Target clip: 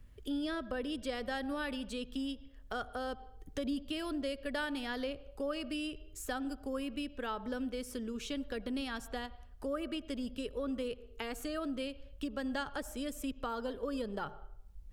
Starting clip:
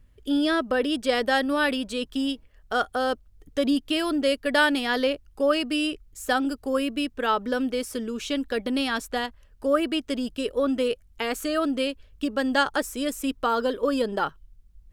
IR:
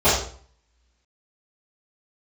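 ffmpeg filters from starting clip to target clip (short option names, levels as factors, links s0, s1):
-filter_complex "[0:a]asplit=2[s0][s1];[1:a]atrim=start_sample=2205,lowpass=3800,adelay=62[s2];[s1][s2]afir=irnorm=-1:irlink=0,volume=0.01[s3];[s0][s3]amix=inputs=2:normalize=0,acrossover=split=140[s4][s5];[s5]acompressor=threshold=0.00398:ratio=2[s6];[s4][s6]amix=inputs=2:normalize=0"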